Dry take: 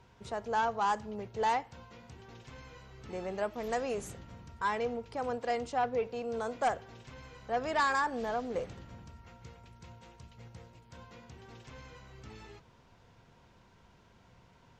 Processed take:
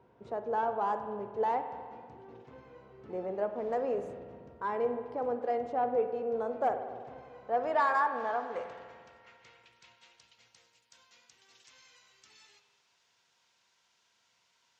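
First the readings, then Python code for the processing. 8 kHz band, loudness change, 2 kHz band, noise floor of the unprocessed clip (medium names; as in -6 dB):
under -10 dB, +1.0 dB, -3.0 dB, -62 dBFS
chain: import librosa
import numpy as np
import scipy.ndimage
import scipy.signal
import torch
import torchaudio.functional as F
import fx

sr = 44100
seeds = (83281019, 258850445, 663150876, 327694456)

y = fx.filter_sweep_bandpass(x, sr, from_hz=440.0, to_hz=6300.0, start_s=7.09, end_s=10.82, q=0.9)
y = fx.rev_spring(y, sr, rt60_s=1.8, pass_ms=(49,), chirp_ms=40, drr_db=8.0)
y = y * librosa.db_to_amplitude(3.0)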